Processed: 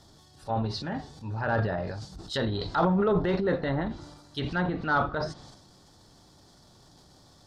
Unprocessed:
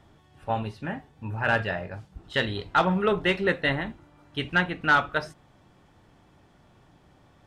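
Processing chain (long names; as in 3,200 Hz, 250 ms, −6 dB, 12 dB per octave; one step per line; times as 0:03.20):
treble cut that deepens with the level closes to 1,400 Hz, closed at −24 dBFS
high shelf with overshoot 3,400 Hz +10 dB, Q 3
transient designer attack −4 dB, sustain +9 dB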